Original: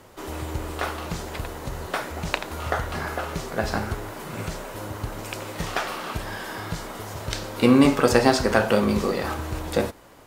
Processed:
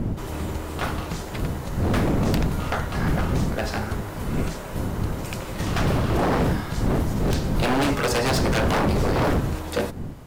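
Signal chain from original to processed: wind noise 170 Hz -19 dBFS; wavefolder -15.5 dBFS

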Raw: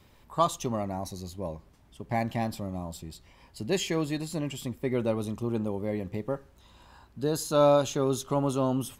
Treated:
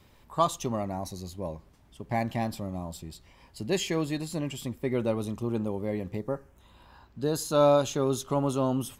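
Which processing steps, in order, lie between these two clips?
6.17–7.22 bell 2500 Hz -> 12000 Hz -12.5 dB 0.58 oct

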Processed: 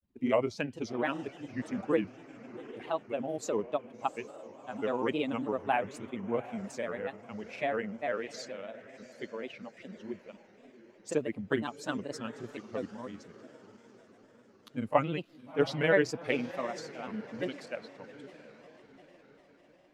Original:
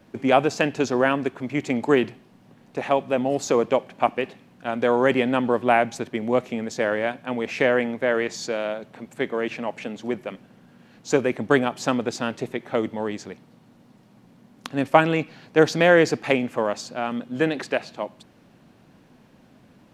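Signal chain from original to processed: per-bin expansion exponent 1.5; diffused feedback echo 0.728 s, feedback 49%, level -15.5 dB; grains, spray 22 ms, pitch spread up and down by 3 st; gain -6.5 dB

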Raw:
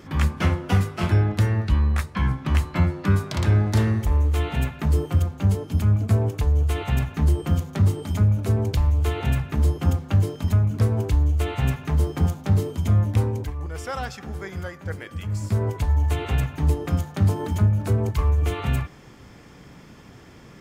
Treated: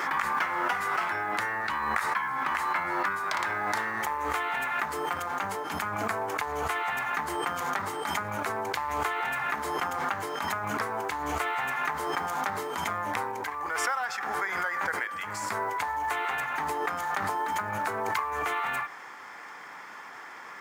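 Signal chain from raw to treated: HPF 540 Hz 12 dB/oct; band shelf 1300 Hz +11.5 dB; compressor, threshold -27 dBFS, peak gain reduction 12 dB; short-mantissa float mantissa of 4-bit; backwards sustainer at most 25 dB/s

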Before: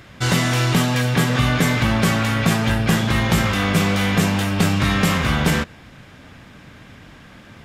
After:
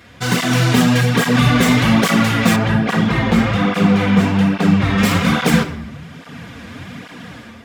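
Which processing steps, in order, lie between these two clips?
tracing distortion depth 0.054 ms; HPF 81 Hz; shoebox room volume 3500 m³, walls furnished, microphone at 1.8 m; AGC gain up to 8 dB; 2.56–4.98 LPF 2000 Hz 6 dB/oct; tape flanging out of phase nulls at 1.2 Hz, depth 7.4 ms; gain +3 dB

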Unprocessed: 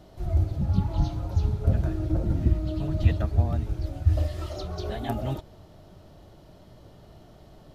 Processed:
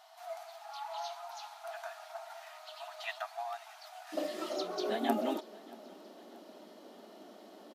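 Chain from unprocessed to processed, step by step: brick-wall FIR high-pass 640 Hz, from 4.12 s 200 Hz; feedback echo 0.631 s, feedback 54%, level -22.5 dB; gain +1 dB

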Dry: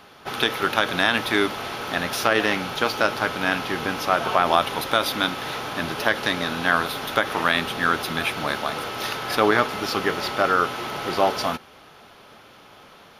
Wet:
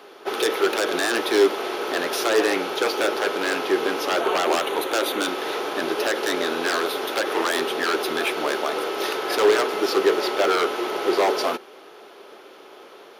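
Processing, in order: 4.21–5.24 bell 5100 Hz -13 dB 0.27 oct; wavefolder -16.5 dBFS; resonant high-pass 380 Hz, resonance Q 3.8

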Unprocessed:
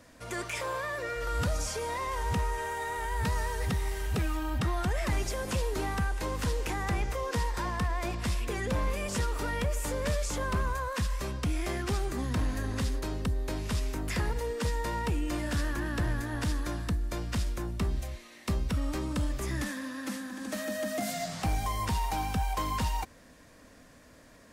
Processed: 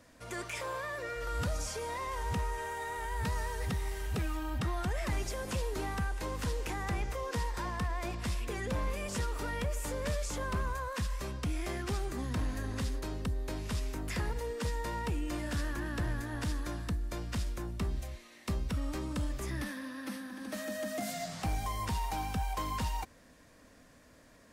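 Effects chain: 19.5–20.54 bell 7200 Hz -11.5 dB 0.32 oct; gain -4 dB

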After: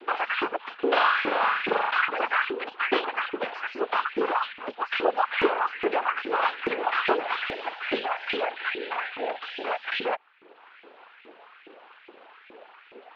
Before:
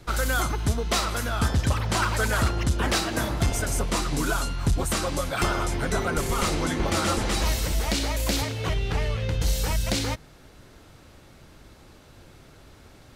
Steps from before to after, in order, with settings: reverb removal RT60 0.84 s; in parallel at +3 dB: compressor, threshold -33 dBFS, peak gain reduction 13.5 dB; on the sum: notch comb 750 Hz; noise vocoder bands 8; 0.75–1.91 flutter echo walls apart 7.3 m, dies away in 1.2 s; mistuned SSB -56 Hz 280–3300 Hz; LFO high-pass saw up 2.4 Hz 320–2400 Hz

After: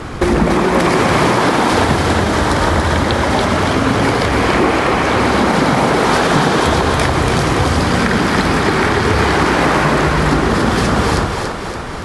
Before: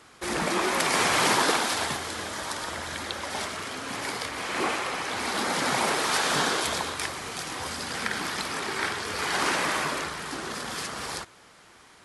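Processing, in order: tilt -3.5 dB/oct; compressor, threshold -37 dBFS, peak gain reduction 18.5 dB; split-band echo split 330 Hz, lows 99 ms, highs 0.284 s, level -4.5 dB; maximiser +25.5 dB; gain -1 dB

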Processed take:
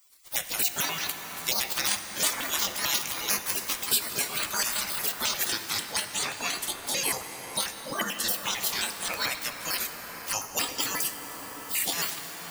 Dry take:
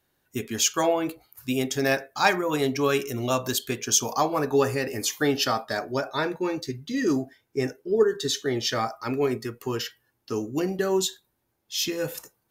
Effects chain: trilling pitch shifter +9.5 st, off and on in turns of 89 ms; tilt +1.5 dB/oct; spectral gate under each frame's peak -20 dB weak; plate-style reverb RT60 4.6 s, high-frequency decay 0.45×, DRR 8 dB; three-band squash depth 70%; gain +9 dB

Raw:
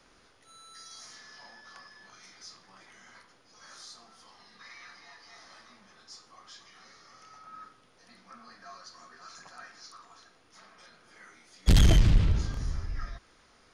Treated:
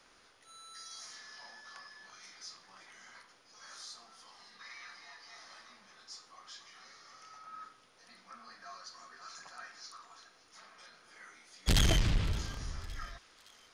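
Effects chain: low shelf 420 Hz -9 dB; thin delay 0.566 s, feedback 56%, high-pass 2200 Hz, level -19 dB

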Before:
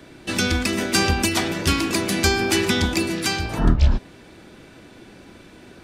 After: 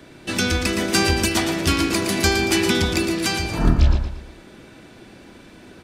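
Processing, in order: feedback echo 0.115 s, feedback 38%, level -7.5 dB

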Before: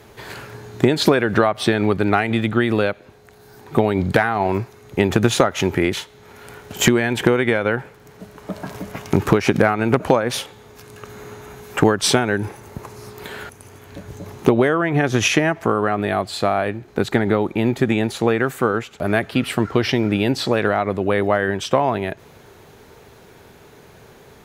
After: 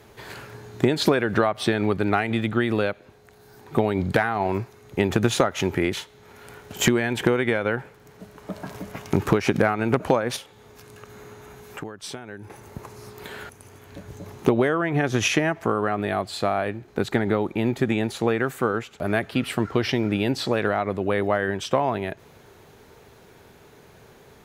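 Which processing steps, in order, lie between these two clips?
10.36–12.5 compressor 2.5:1, threshold -36 dBFS, peak gain reduction 18 dB; gain -4.5 dB

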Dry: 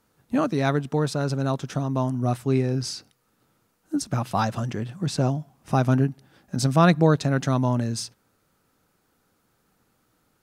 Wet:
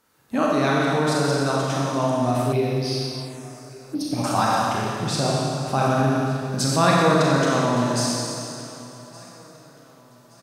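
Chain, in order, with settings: low shelf 83 Hz -7 dB; Schroeder reverb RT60 2.4 s, combs from 29 ms, DRR -4.5 dB; in parallel at +2 dB: limiter -11.5 dBFS, peak gain reduction 9 dB; 2.52–4.24 on the sum: envelope phaser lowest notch 500 Hz, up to 1400 Hz, full sweep at -16.5 dBFS; low shelf 450 Hz -6.5 dB; on a send: feedback echo 1.17 s, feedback 36%, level -21 dB; on the sum: gain -4 dB

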